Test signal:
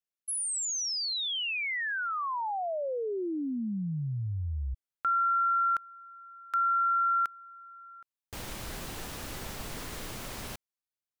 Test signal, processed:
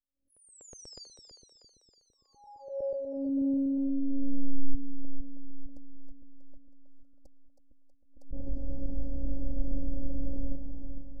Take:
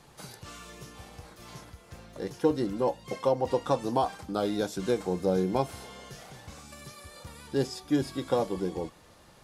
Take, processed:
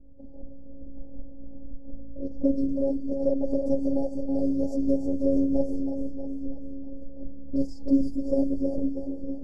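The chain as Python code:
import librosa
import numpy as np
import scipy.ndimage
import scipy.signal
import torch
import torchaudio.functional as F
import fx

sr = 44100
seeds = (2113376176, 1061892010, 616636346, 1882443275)

p1 = fx.robotise(x, sr, hz=274.0)
p2 = fx.env_lowpass(p1, sr, base_hz=540.0, full_db=-29.0)
p3 = scipy.signal.sosfilt(scipy.signal.cheby1(5, 1.0, [710.0, 4600.0], 'bandstop', fs=sr, output='sos'), p2)
p4 = fx.peak_eq(p3, sr, hz=3200.0, db=-5.0, octaves=1.3)
p5 = fx.filter_lfo_notch(p4, sr, shape='saw_up', hz=8.2, low_hz=470.0, high_hz=6300.0, q=2.8)
p6 = fx.riaa(p5, sr, side='playback')
p7 = p6 + fx.echo_split(p6, sr, split_hz=430.0, low_ms=456, high_ms=320, feedback_pct=52, wet_db=-6.5, dry=0)
y = fx.pre_swell(p7, sr, db_per_s=110.0)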